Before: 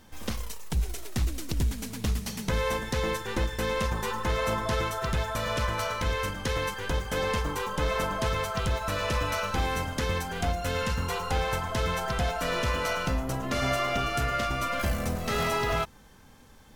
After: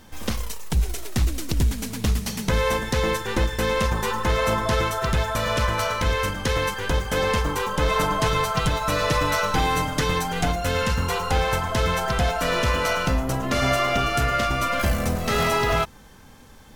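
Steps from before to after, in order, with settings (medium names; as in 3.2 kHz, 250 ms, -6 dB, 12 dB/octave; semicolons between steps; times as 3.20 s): 7.88–10.56 s: comb 6.6 ms, depth 63%; trim +6 dB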